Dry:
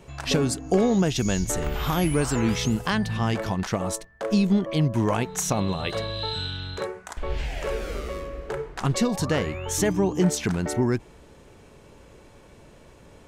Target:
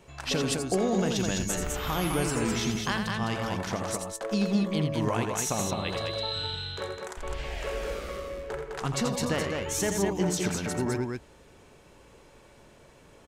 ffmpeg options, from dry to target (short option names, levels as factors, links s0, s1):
-af "lowshelf=f=440:g=-5,aecho=1:1:84.55|207:0.447|0.631,volume=0.668"